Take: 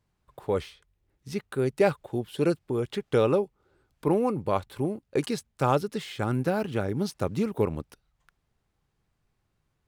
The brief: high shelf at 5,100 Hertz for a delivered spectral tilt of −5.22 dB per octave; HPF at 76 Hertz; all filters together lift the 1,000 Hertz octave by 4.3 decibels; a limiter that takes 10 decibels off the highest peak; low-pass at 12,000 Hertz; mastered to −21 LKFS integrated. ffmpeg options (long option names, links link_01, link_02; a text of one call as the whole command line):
ffmpeg -i in.wav -af "highpass=76,lowpass=12000,equalizer=frequency=1000:width_type=o:gain=6,highshelf=frequency=5100:gain=-9,volume=9dB,alimiter=limit=-7.5dB:level=0:latency=1" out.wav